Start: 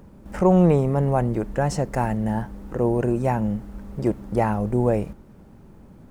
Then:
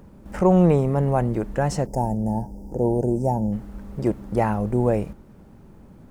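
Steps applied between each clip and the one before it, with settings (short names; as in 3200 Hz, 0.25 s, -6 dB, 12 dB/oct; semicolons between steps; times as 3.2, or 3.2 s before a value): spectral gain 1.86–3.52, 950–4700 Hz -23 dB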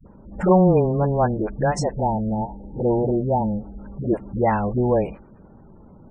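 low shelf 420 Hz -5.5 dB; dispersion highs, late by 67 ms, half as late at 310 Hz; spectral gate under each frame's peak -25 dB strong; gain +4.5 dB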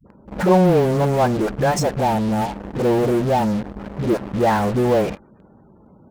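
HPF 120 Hz 6 dB/oct; in parallel at -12 dB: fuzz box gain 43 dB, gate -39 dBFS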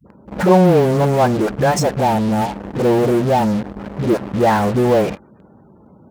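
HPF 60 Hz; gain +3 dB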